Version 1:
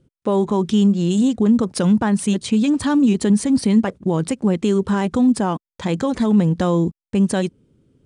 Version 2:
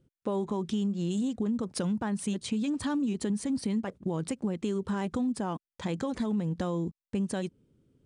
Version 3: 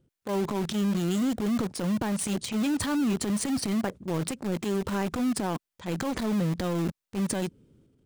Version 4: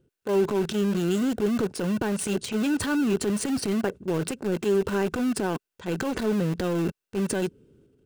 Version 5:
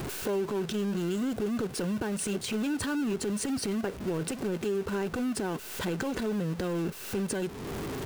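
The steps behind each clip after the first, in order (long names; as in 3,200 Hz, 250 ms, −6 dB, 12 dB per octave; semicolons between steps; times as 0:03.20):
downward compressor 4 to 1, threshold −19 dBFS, peak gain reduction 8 dB; level −8.5 dB
transient designer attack −8 dB, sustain +7 dB; in parallel at −7 dB: bit reduction 5 bits
hollow resonant body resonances 410/1,500/2,700 Hz, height 9 dB, ringing for 25 ms
converter with a step at zero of −33 dBFS; downward compressor 3 to 1, threshold −35 dBFS, peak gain reduction 13 dB; level +3.5 dB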